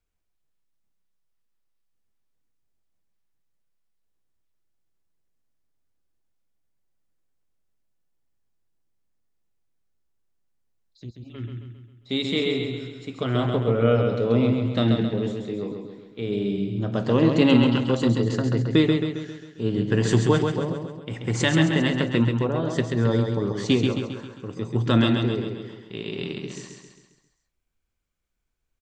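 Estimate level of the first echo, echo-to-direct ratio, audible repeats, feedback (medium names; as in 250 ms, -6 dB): -5.0 dB, -3.5 dB, 6, 51%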